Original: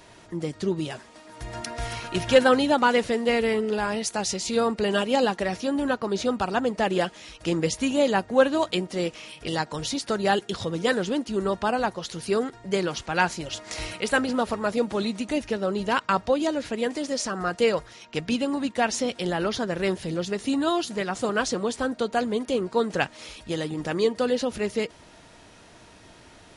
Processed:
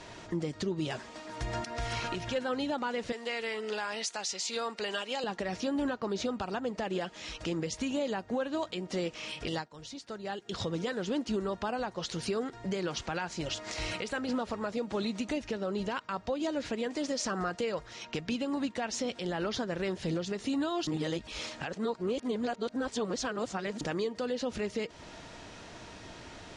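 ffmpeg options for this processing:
-filter_complex "[0:a]asettb=1/sr,asplit=3[s0][s1][s2];[s0]atrim=end=3.124[s3];[s1]atrim=start=3.12:end=5.24,asetpts=PTS-STARTPTS,afade=t=in:d=0.004:c=qsin,afade=t=out:st=2.116:d=0.004:c=qsin,highpass=f=1300:p=1[s4];[s2]atrim=start=5.236[s5];[s3][s4]acrossfade=d=0.004:c1=hsin:c2=qsin[s6];[s6][s5]acrossfade=d=0.004:c1=qsin:c2=hsin,asplit=5[s7][s8][s9][s10][s11];[s7]atrim=end=9.69,asetpts=PTS-STARTPTS,afade=t=out:st=9.5:d=0.19:c=qsin:silence=0.125893[s12];[s8]atrim=start=9.69:end=10.44,asetpts=PTS-STARTPTS,volume=0.126[s13];[s9]atrim=start=10.44:end=20.872,asetpts=PTS-STARTPTS,afade=t=in:d=0.19:c=qsin:silence=0.125893[s14];[s10]atrim=start=20.868:end=23.812,asetpts=PTS-STARTPTS,areverse[s15];[s11]atrim=start=23.808[s16];[s12][s13][s14]concat=n=3:v=0:a=1[s17];[s17][s15]acrossfade=d=0.004:c1=hsin:c2=hsin[s18];[s18][s16]acrossfade=d=0.004:c1=hsin:c2=hsin,lowpass=f=7700:w=0.5412,lowpass=f=7700:w=1.3066,acompressor=threshold=0.0178:ratio=2,alimiter=level_in=1.33:limit=0.0631:level=0:latency=1:release=189,volume=0.75,volume=1.41"

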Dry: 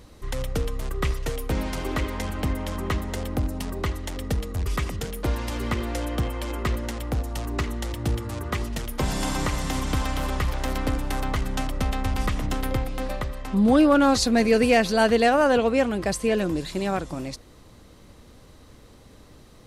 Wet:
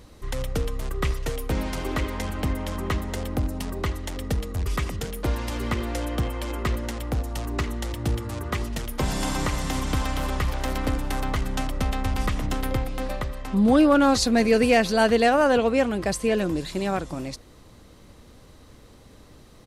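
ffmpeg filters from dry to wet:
-filter_complex "[0:a]asplit=2[s0][s1];[s1]afade=t=in:st=10.02:d=0.01,afade=t=out:st=10.47:d=0.01,aecho=0:1:440|880|1320:0.133352|0.0533409|0.0213363[s2];[s0][s2]amix=inputs=2:normalize=0"

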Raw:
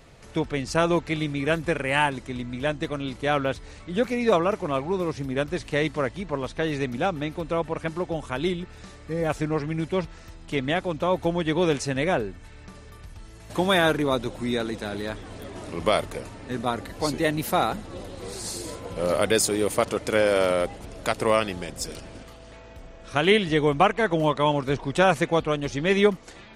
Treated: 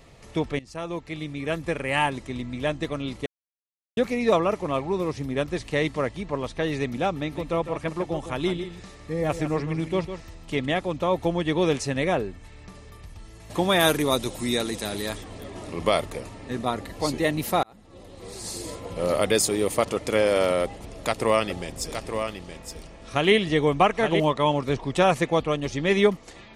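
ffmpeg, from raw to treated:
-filter_complex "[0:a]asettb=1/sr,asplit=3[s0][s1][s2];[s0]atrim=end=7.174[s3];[s1]atrim=start=7.17:end=10.66,asetpts=PTS-STARTPTS,afade=t=in:d=0.004:c=qsin,afade=t=out:st=3.486:d=0.004:c=qsin,aecho=1:1:154:0.316,atrim=end_sample=153909[s4];[s2]atrim=start=10.656[s5];[s3][s4]acrossfade=d=0.004:c1=hsin:c2=qsin[s6];[s6][s5]acrossfade=d=0.004:c1=qsin:c2=hsin,asplit=3[s7][s8][s9];[s7]afade=t=out:st=13.79:d=0.02[s10];[s8]aemphasis=mode=production:type=75kf,afade=t=in:st=13.79:d=0.02,afade=t=out:st=15.23:d=0.02[s11];[s9]afade=t=in:st=15.23:d=0.02[s12];[s10][s11][s12]amix=inputs=3:normalize=0,asettb=1/sr,asplit=3[s13][s14][s15];[s13]atrim=end=20.634[s16];[s14]atrim=start=20.63:end=24.2,asetpts=PTS-STARTPTS,afade=t=in:d=0.004:c=qsin,afade=t=out:st=3.566:d=0.004:c=qsin,aecho=1:1:869:0.422,atrim=end_sample=157437[s17];[s15]atrim=start=24.196[s18];[s16][s17]acrossfade=d=0.004:c1=hsin:c2=qsin[s19];[s19][s18]acrossfade=d=0.004:c1=qsin:c2=hsin,asplit=5[s20][s21][s22][s23][s24];[s20]atrim=end=0.59,asetpts=PTS-STARTPTS,afade=t=out:st=0.586:d=0.004:c=hsin:silence=0.149624[s25];[s21]atrim=start=0.59:end=3.26,asetpts=PTS-STARTPTS,afade=t=in:d=1.55:silence=0.149624,afade=t=out:st=2.666:d=0.004:c=hsin[s26];[s22]atrim=start=3.26:end=3.97,asetpts=PTS-STARTPTS,volume=0[s27];[s23]atrim=start=3.97:end=17.63,asetpts=PTS-STARTPTS,afade=t=in:d=0.004:c=hsin,afade=t=out:st=13.656:d=0.004:c=hsin[s28];[s24]atrim=start=17.63,asetpts=PTS-STARTPTS,afade=t=in:d=1.02[s29];[s25][s26][s27][s28][s29]concat=n=5:v=0:a=1,bandreject=f=1500:w=8.4"

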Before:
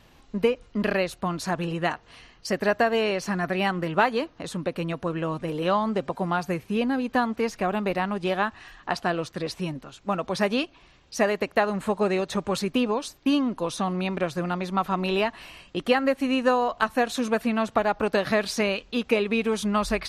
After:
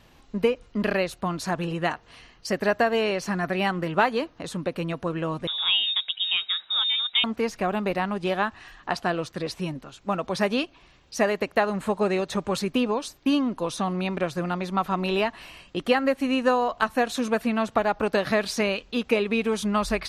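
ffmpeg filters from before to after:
-filter_complex "[0:a]asettb=1/sr,asplit=3[s0][s1][s2];[s0]atrim=end=5.474[s3];[s1]atrim=start=5.47:end=7.24,asetpts=PTS-STARTPTS,afade=t=in:d=0.004:c=qsin,afade=t=out:st=1.766:d=0.004:c=qsin,lowpass=f=3300:t=q:w=0.5098,lowpass=f=3300:t=q:w=0.6013,lowpass=f=3300:t=q:w=0.9,lowpass=f=3300:t=q:w=2.563,afreqshift=-3900[s4];[s2]atrim=start=7.236[s5];[s3][s4]acrossfade=d=0.004:c1=hsin:c2=qsin[s6];[s6][s5]acrossfade=d=0.004:c1=qsin:c2=hsin"

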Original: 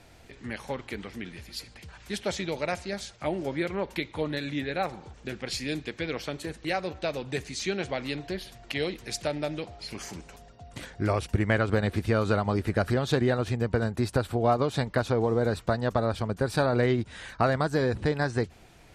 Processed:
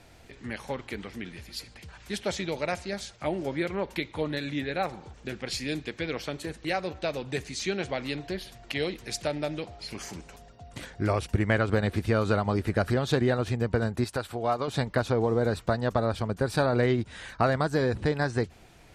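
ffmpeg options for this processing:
-filter_complex "[0:a]asettb=1/sr,asplit=3[s0][s1][s2];[s0]atrim=end=14.044[s3];[s1]atrim=start=14.04:end=14.68,asetpts=PTS-STARTPTS,afade=t=in:d=0.004:c=qsin,afade=t=out:st=0.636:d=0.004:c=qsin,lowshelf=f=490:g=-9.5[s4];[s2]atrim=start=14.676[s5];[s3][s4]acrossfade=d=0.004:c1=hsin:c2=qsin[s6];[s6][s5]acrossfade=d=0.004:c1=qsin:c2=hsin"

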